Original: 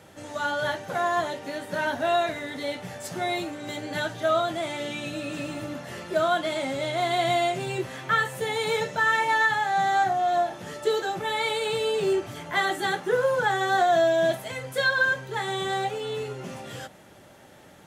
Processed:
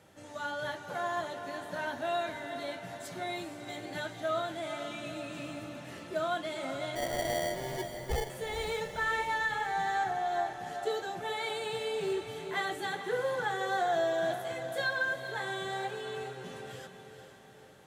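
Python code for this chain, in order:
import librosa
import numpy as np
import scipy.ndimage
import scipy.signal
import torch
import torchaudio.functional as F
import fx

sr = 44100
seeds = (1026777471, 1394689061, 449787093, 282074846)

y = fx.sample_hold(x, sr, seeds[0], rate_hz=1300.0, jitter_pct=0, at=(6.95, 8.3))
y = fx.echo_diffused(y, sr, ms=453, feedback_pct=50, wet_db=-9)
y = F.gain(torch.from_numpy(y), -9.0).numpy()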